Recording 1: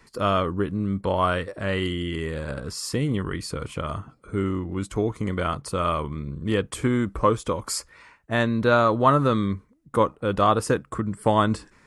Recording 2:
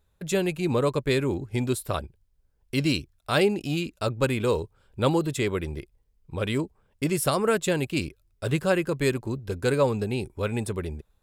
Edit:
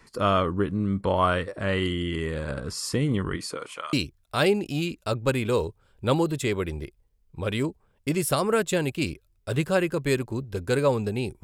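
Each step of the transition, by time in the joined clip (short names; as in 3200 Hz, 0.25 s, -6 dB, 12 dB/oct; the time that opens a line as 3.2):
recording 1
3.36–3.93 HPF 160 Hz -> 1400 Hz
3.93 switch to recording 2 from 2.88 s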